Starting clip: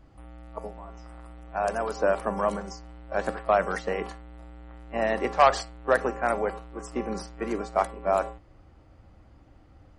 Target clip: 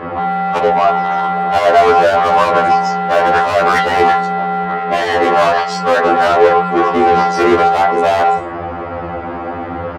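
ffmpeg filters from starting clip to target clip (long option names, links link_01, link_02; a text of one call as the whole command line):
ffmpeg -i in.wav -filter_complex "[0:a]lowshelf=frequency=110:gain=-9.5,acrossover=split=5000[link_01][link_02];[link_02]adelay=150[link_03];[link_01][link_03]amix=inputs=2:normalize=0,acompressor=threshold=-32dB:ratio=8,asplit=3[link_04][link_05][link_06];[link_04]afade=type=out:start_time=4.64:duration=0.02[link_07];[link_05]flanger=delay=22.5:depth=5.8:speed=1.2,afade=type=in:start_time=4.64:duration=0.02,afade=type=out:start_time=7.14:duration=0.02[link_08];[link_06]afade=type=in:start_time=7.14:duration=0.02[link_09];[link_07][link_08][link_09]amix=inputs=3:normalize=0,adynamicsmooth=sensitivity=5.5:basefreq=1800,asplit=2[link_10][link_11];[link_11]highpass=frequency=720:poles=1,volume=28dB,asoftclip=type=tanh:threshold=-21.5dB[link_12];[link_10][link_12]amix=inputs=2:normalize=0,lowpass=frequency=2900:poles=1,volume=-6dB,highpass=64,alimiter=level_in=29.5dB:limit=-1dB:release=50:level=0:latency=1,afftfilt=real='re*2*eq(mod(b,4),0)':imag='im*2*eq(mod(b,4),0)':win_size=2048:overlap=0.75,volume=-4dB" out.wav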